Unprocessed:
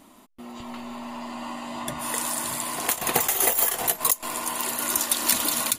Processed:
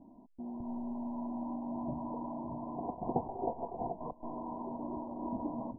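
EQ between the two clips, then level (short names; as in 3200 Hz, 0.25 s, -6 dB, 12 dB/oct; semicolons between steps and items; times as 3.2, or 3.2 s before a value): rippled Chebyshev low-pass 1000 Hz, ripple 6 dB; tilt -2 dB/oct; -4.5 dB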